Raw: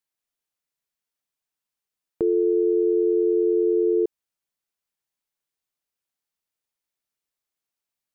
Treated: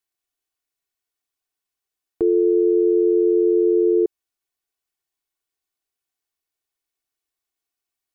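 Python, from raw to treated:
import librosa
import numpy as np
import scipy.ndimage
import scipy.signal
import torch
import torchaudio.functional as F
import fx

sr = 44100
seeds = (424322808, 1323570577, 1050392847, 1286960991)

y = x + 0.65 * np.pad(x, (int(2.7 * sr / 1000.0), 0))[:len(x)]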